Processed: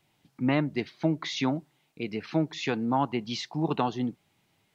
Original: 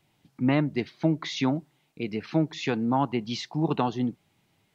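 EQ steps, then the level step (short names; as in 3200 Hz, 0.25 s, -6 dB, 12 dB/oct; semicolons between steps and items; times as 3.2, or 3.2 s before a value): low shelf 380 Hz -3.5 dB; 0.0 dB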